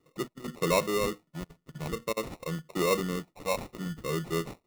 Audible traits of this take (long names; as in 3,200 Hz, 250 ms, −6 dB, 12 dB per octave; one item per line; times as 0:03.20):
phaser sweep stages 12, 0.49 Hz, lowest notch 370–2,300 Hz
aliases and images of a low sample rate 1,600 Hz, jitter 0%